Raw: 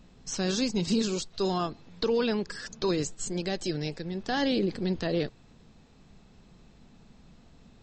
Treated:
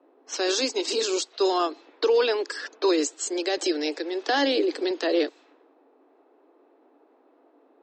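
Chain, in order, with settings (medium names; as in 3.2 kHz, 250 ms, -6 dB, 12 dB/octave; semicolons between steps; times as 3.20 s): level-controlled noise filter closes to 720 Hz, open at -28.5 dBFS; steep high-pass 280 Hz 96 dB/octave; 3.57–4.91 s: three bands compressed up and down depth 40%; trim +6.5 dB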